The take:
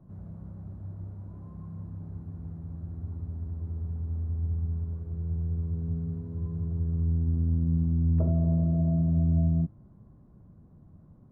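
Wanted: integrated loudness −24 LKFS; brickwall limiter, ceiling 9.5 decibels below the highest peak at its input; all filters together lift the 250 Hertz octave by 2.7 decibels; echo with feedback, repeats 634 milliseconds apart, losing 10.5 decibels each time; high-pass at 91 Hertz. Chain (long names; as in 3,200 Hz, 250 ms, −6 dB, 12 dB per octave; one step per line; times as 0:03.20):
high-pass filter 91 Hz
parametric band 250 Hz +5.5 dB
brickwall limiter −24.5 dBFS
repeating echo 634 ms, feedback 30%, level −10.5 dB
level +11 dB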